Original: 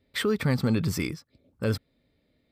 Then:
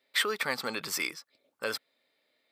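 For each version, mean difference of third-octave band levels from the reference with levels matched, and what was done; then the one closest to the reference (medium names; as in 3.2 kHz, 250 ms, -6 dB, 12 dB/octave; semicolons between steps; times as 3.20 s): 9.5 dB: high-pass 770 Hz 12 dB/octave; trim +3.5 dB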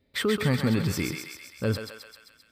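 5.0 dB: thinning echo 131 ms, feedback 67%, high-pass 730 Hz, level -4 dB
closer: second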